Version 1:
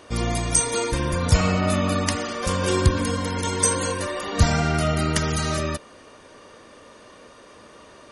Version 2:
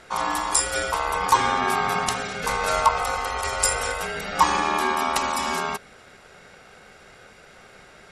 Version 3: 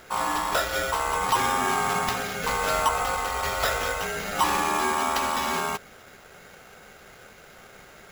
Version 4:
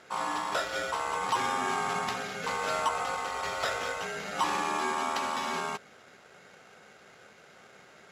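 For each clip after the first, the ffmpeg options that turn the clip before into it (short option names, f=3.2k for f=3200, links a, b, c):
-af "aeval=exprs='val(0)*sin(2*PI*1000*n/s)':c=same,volume=1.5dB"
-af "acrusher=samples=5:mix=1:aa=0.000001,asoftclip=type=tanh:threshold=-15.5dB"
-af "highpass=130,lowpass=7.7k,volume=-5.5dB"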